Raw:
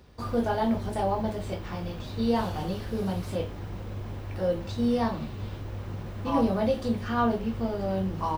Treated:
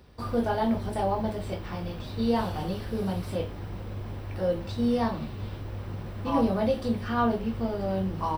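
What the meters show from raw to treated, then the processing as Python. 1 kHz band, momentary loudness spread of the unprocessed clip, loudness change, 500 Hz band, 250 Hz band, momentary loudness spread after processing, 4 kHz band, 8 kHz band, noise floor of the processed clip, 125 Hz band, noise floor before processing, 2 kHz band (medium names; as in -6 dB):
0.0 dB, 11 LU, 0.0 dB, 0.0 dB, 0.0 dB, 11 LU, 0.0 dB, no reading, -39 dBFS, 0.0 dB, -39 dBFS, 0.0 dB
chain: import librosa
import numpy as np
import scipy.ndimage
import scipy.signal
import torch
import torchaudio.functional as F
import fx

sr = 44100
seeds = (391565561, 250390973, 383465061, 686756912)

y = fx.notch(x, sr, hz=6700.0, q=5.2)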